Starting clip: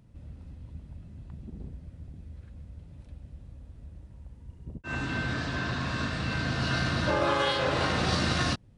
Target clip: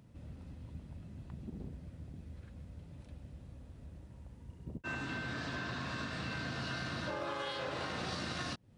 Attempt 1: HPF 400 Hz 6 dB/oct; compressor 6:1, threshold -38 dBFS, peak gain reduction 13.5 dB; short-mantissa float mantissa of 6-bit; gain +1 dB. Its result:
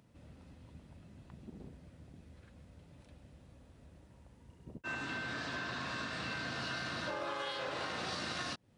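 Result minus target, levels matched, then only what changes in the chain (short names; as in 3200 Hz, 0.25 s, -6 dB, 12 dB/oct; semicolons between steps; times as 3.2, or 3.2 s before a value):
125 Hz band -8.5 dB
change: HPF 130 Hz 6 dB/oct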